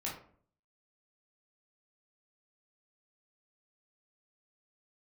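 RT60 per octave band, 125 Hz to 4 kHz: 0.70, 0.65, 0.55, 0.50, 0.40, 0.30 seconds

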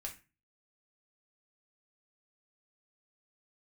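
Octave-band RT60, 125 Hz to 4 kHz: 0.50, 0.40, 0.30, 0.30, 0.35, 0.25 seconds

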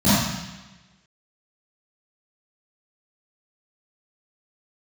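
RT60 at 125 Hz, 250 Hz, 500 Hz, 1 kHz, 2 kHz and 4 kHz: 1.2, 1.2, 1.1, 1.1, 1.3, 1.2 seconds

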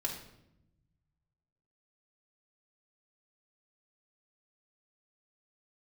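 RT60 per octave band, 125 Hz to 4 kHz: 2.2, 1.4, 0.90, 0.70, 0.65, 0.60 seconds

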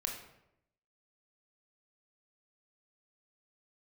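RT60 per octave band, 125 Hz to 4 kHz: 0.95, 0.90, 0.90, 0.75, 0.70, 0.55 seconds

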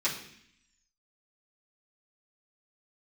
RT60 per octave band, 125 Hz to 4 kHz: 0.85, 0.95, 0.65, 0.65, 0.90, 0.85 seconds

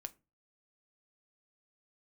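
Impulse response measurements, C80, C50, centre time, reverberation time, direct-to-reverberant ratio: 29.5 dB, 23.0 dB, 2 ms, 0.30 s, 9.5 dB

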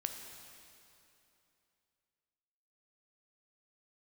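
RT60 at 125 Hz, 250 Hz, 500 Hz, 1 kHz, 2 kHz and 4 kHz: 3.0, 3.0, 2.9, 2.8, 2.7, 2.5 seconds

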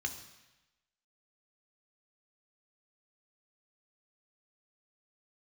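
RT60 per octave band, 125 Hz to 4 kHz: 1.0, 1.0, 0.95, 1.1, 1.1, 1.1 seconds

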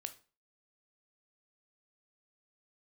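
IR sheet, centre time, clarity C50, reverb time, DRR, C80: 5 ms, 15.0 dB, 0.35 s, 8.5 dB, 21.0 dB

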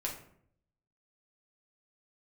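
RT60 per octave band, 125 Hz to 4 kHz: 0.95, 0.80, 0.70, 0.60, 0.50, 0.35 seconds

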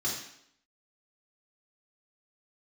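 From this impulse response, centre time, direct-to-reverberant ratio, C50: 43 ms, −5.5 dB, 3.5 dB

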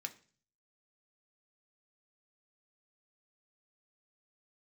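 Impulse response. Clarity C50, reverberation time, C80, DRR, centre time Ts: 16.5 dB, 0.40 s, 21.0 dB, 5.0 dB, 6 ms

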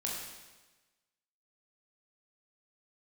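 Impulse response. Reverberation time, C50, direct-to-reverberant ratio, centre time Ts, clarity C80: 1.2 s, 1.0 dB, −3.5 dB, 71 ms, 3.0 dB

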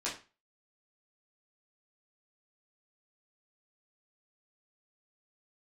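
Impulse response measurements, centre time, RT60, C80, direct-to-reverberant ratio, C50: 26 ms, 0.30 s, 14.0 dB, −8.0 dB, 8.5 dB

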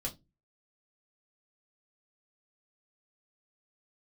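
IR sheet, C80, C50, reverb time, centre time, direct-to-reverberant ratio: 26.0 dB, 18.0 dB, non-exponential decay, 11 ms, −1.0 dB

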